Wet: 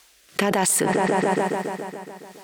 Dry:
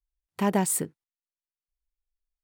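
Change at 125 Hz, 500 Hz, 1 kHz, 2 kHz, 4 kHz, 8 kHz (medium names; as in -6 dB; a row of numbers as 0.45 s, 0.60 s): +5.0 dB, +11.0 dB, +11.0 dB, +14.5 dB, +13.0 dB, +7.0 dB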